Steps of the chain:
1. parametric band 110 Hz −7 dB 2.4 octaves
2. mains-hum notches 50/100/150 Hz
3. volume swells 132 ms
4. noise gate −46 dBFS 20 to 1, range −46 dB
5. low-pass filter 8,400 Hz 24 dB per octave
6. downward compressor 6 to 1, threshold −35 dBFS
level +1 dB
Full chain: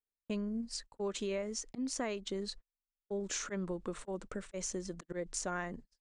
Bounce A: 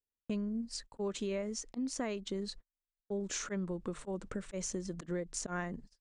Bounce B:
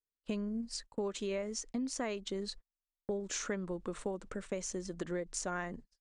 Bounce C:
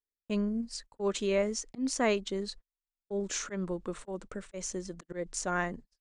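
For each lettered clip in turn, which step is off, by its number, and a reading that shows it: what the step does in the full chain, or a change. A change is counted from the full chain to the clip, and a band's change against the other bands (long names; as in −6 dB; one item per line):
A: 1, 125 Hz band +4.0 dB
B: 3, change in momentary loudness spread −2 LU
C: 6, average gain reduction 3.0 dB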